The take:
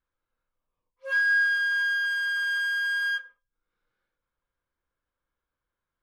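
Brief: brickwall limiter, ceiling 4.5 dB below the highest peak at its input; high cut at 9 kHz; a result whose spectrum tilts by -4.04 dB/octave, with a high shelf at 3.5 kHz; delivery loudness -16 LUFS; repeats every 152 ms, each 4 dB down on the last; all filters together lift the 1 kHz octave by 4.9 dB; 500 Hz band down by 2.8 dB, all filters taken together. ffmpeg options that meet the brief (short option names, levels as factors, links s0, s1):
-af "lowpass=9000,equalizer=f=500:t=o:g=-4.5,equalizer=f=1000:t=o:g=7,highshelf=f=3500:g=-7,alimiter=limit=0.0891:level=0:latency=1,aecho=1:1:152|304|456|608|760|912|1064|1216|1368:0.631|0.398|0.25|0.158|0.0994|0.0626|0.0394|0.0249|0.0157,volume=2.11"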